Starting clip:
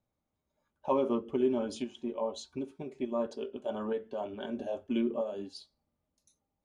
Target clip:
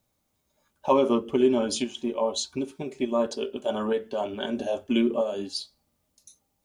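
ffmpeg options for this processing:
-af "highshelf=f=2700:g=11,volume=2.24"

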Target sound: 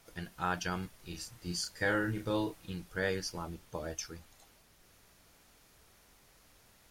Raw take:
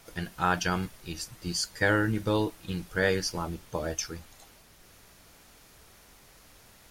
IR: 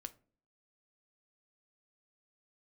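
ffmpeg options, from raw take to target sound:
-filter_complex "[0:a]asettb=1/sr,asplit=3[s0][s1][s2];[s0]atrim=end=0.964[s3];[s1]atrim=start=0.96:end=2.69,asetpts=PTS-STARTPTS,afade=t=in:d=0.004:c=qsin,afade=t=out:st=1.726:d=0.004:c=qsin,asplit=2[s4][s5];[s5]adelay=34,volume=0.596[s6];[s4][s6]amix=inputs=2:normalize=0,atrim=end_sample=76293[s7];[s2]atrim=start=2.686[s8];[s3][s7]acrossfade=d=0.004:c1=hsin:c2=qsin[s9];[s9][s8]acrossfade=d=0.004:c1=qsin:c2=hsin,volume=0.422"

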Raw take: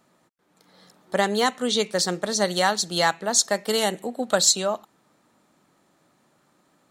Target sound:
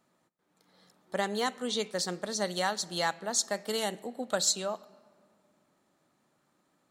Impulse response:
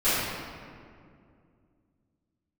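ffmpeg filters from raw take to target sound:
-filter_complex "[0:a]asplit=2[s0][s1];[1:a]atrim=start_sample=2205[s2];[s1][s2]afir=irnorm=-1:irlink=0,volume=0.0158[s3];[s0][s3]amix=inputs=2:normalize=0,volume=0.355"

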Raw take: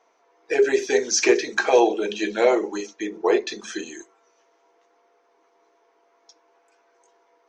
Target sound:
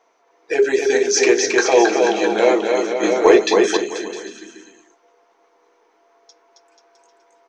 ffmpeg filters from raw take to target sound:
-filter_complex "[0:a]aecho=1:1:270|486|658.8|797|907.6:0.631|0.398|0.251|0.158|0.1,asettb=1/sr,asplit=3[s0][s1][s2];[s0]atrim=end=3.034[s3];[s1]atrim=start=3.03:end=3.77,asetpts=PTS-STARTPTS,afade=t=in:d=0.004:c=qsin,afade=t=out:st=0.736:d=0.004:c=qsin,acontrast=70[s4];[s2]atrim=start=3.766[s5];[s3][s4]acrossfade=d=0.004:c1=hsin:c2=qsin[s6];[s6][s5]acrossfade=d=0.004:c1=qsin:c2=hsin,volume=1.33"

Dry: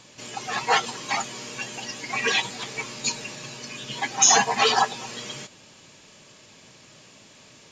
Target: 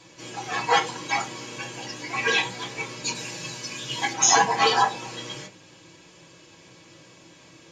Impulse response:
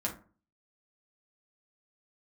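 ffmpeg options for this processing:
-filter_complex "[0:a]asettb=1/sr,asplit=3[s0][s1][s2];[s0]atrim=end=3.154[s3];[s1]atrim=start=3.15:end=4.13,asetpts=PTS-STARTPTS,afade=t=in:d=0.004:c=qsin,afade=t=out:st=0.976:d=0.004:c=qsin,highshelf=f=3900:g=9[s4];[s2]atrim=start=4.126[s5];[s3][s4]acrossfade=d=0.004:c1=hsin:c2=qsin[s6];[s6][s5]acrossfade=d=0.004:c1=qsin:c2=hsin[s7];[1:a]atrim=start_sample=2205,asetrate=70560,aresample=44100[s8];[s7][s8]afir=irnorm=-1:irlink=0"

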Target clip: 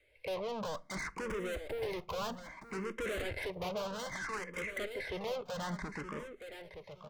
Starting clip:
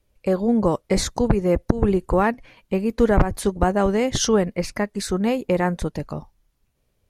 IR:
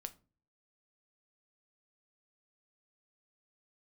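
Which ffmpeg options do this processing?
-filter_complex "[0:a]asettb=1/sr,asplit=3[s0][s1][s2];[s0]atrim=end=3.024[s3];[s1]atrim=start=3.02:end=3.5,asetpts=PTS-STARTPTS,afade=t=in:d=0.004:c=qsin,afade=t=out:st=0.476:d=0.004:c=qsin,aeval=exprs='val(0)+0.5*0.0596*sgn(val(0))':c=same[s4];[s2]atrim=start=3.496[s5];[s3][s4]acrossfade=d=0.004:c1=hsin:c2=qsin[s6];[s6][s5]acrossfade=d=0.004:c1=qsin:c2=hsin,lowpass=2800,aemphasis=mode=production:type=riaa,asettb=1/sr,asplit=3[s7][s8][s9];[s7]atrim=end=4.064[s10];[s8]atrim=start=4.06:end=4.56,asetpts=PTS-STARTPTS,afade=t=in:d=0.004:c=qsin,afade=t=out:st=0.496:d=0.004:c=qsin,highpass=f=590:w=0.5412,highpass=f=590:w=1.3066[s11];[s9]atrim=start=4.556[s12];[s10][s11]acrossfade=d=0.004:c1=hsin:c2=qsin[s13];[s13][s12]acrossfade=d=0.004:c1=qsin:c2=hsin,equalizer=f=2100:w=5.1:g=13,aecho=1:1:1.9:0.42,acrossover=split=760|1900[s14][s15][s16];[s16]acompressor=threshold=0.00126:ratio=6[s17];[s14][s15][s17]amix=inputs=3:normalize=0,asoftclip=type=tanh:threshold=0.0126,asettb=1/sr,asplit=3[s18][s19][s20];[s18]atrim=end=1.314[s21];[s19]atrim=start=1.31:end=2.18,asetpts=PTS-STARTPTS,afade=t=in:d=0.004:c=qsin,afade=t=out:st=0.866:d=0.004:c=qsin,acrusher=bits=8:mix=0:aa=0.5[s22];[s20]atrim=start=2.176[s23];[s21][s22]acrossfade=d=0.004:c1=hsin:c2=qsin[s24];[s24][s23]acrossfade=d=0.004:c1=qsin:c2=hsin,aecho=1:1:919|1838|2757:0.316|0.0791|0.0198,asplit=2[s25][s26];[1:a]atrim=start_sample=2205[s27];[s26][s27]afir=irnorm=-1:irlink=0,volume=1.26[s28];[s25][s28]amix=inputs=2:normalize=0,asplit=2[s29][s30];[s30]afreqshift=0.62[s31];[s29][s31]amix=inputs=2:normalize=1,volume=0.891"

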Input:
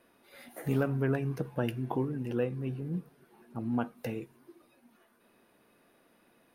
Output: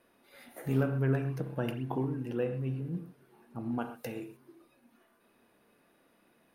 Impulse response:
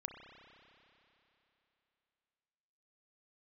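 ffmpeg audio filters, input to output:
-filter_complex "[0:a]asettb=1/sr,asplit=3[s0][s1][s2];[s0]atrim=end=3.784[s3];[s1]atrim=start=3.78:end=4.37,asetpts=PTS-STARTPTS,afade=t=in:d=0.004:c=qsin,afade=t=out:st=0.586:d=0.004:c=qsin,bass=f=250:g=-4,treble=f=4000:g=6[s4];[s2]atrim=start=4.366[s5];[s3][s4]acrossfade=d=0.004:c1=hsin:c2=qsin[s6];[s6][s5]acrossfade=d=0.004:c1=qsin:c2=hsin[s7];[1:a]atrim=start_sample=2205,atrim=end_sample=6174[s8];[s7][s8]afir=irnorm=-1:irlink=0,volume=1.19"

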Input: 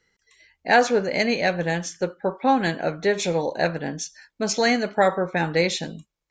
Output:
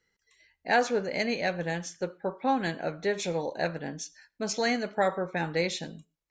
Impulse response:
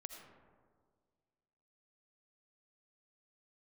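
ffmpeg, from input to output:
-filter_complex "[0:a]asplit=2[s0][s1];[1:a]atrim=start_sample=2205,atrim=end_sample=6174[s2];[s1][s2]afir=irnorm=-1:irlink=0,volume=0.211[s3];[s0][s3]amix=inputs=2:normalize=0,volume=0.398"

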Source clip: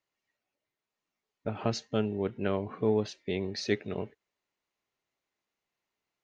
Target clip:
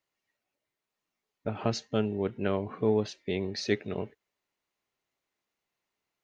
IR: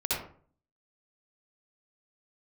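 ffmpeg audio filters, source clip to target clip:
-af "volume=1.12"

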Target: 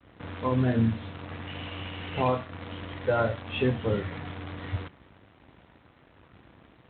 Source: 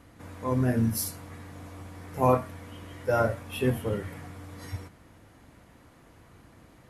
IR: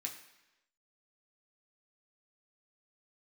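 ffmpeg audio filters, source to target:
-filter_complex "[0:a]alimiter=limit=0.1:level=0:latency=1:release=339,asettb=1/sr,asplit=3[s0][s1][s2];[s0]atrim=end=1.474[s3];[s1]atrim=start=1.47:end=2.28,asetpts=PTS-STARTPTS,afade=t=in:d=0.004:c=qsin,afade=t=out:st=0.806:d=0.004:c=qsin,lowpass=f=2900:t=q:w=12[s4];[s2]atrim=start=2.276[s5];[s3][s4]acrossfade=d=0.004:c1=hsin:c2=qsin[s6];[s6][s5]acrossfade=d=0.004:c1=qsin:c2=hsin,acrusher=bits=8:dc=4:mix=0:aa=0.000001,highpass=f=48:w=0.5412,highpass=f=48:w=1.3066,agate=range=0.0224:threshold=0.00141:ratio=3:detection=peak,volume=1.68" -ar 8000 -c:a adpcm_g726 -b:a 24k

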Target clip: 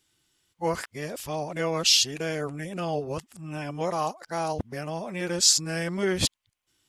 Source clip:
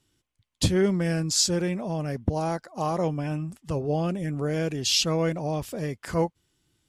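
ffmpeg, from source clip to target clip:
-af "areverse,lowshelf=f=470:g=-12,volume=1.5"

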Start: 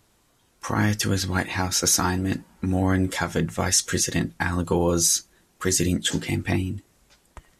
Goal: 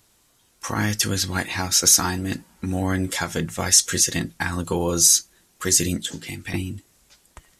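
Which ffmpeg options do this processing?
-filter_complex "[0:a]highshelf=f=2600:g=8.5,asettb=1/sr,asplit=3[s0][s1][s2];[s0]atrim=end=6.054[s3];[s1]atrim=start=6.05:end=6.54,asetpts=PTS-STARTPTS,afade=t=in:d=0.004:c=qsin,afade=t=out:st=0.486:d=0.004:c=qsin,acrossover=split=360|1200[s4][s5][s6];[s4]acompressor=threshold=0.0251:ratio=4[s7];[s5]acompressor=threshold=0.00562:ratio=4[s8];[s6]acompressor=threshold=0.0316:ratio=4[s9];[s7][s8][s9]amix=inputs=3:normalize=0[s10];[s2]atrim=start=6.536[s11];[s3][s10]acrossfade=d=0.004:c1=hsin:c2=qsin[s12];[s12][s11]acrossfade=d=0.004:c1=qsin:c2=hsin,volume=0.794"

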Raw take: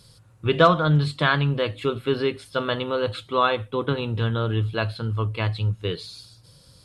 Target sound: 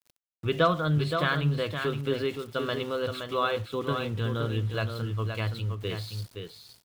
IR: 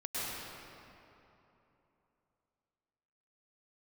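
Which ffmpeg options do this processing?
-filter_complex "[0:a]equalizer=f=900:w=5.6:g=-6.5,asplit=2[s0][s1];[s1]acompressor=threshold=0.02:ratio=6,volume=0.891[s2];[s0][s2]amix=inputs=2:normalize=0,aeval=exprs='val(0)*gte(abs(val(0)),0.0133)':c=same,aecho=1:1:520:0.473,volume=0.422"

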